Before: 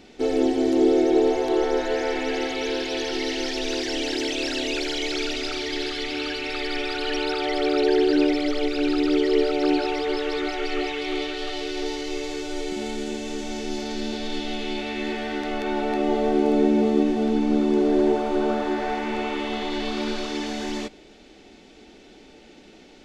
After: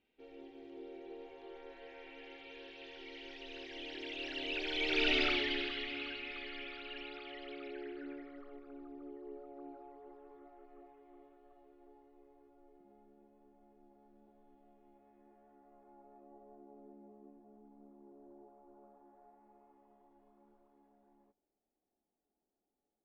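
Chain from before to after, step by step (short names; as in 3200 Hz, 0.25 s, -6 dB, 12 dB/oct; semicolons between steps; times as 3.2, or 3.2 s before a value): Doppler pass-by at 5.18, 15 m/s, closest 2.9 m; low-pass sweep 2800 Hz -> 880 Hz, 7.54–8.91; gain -4 dB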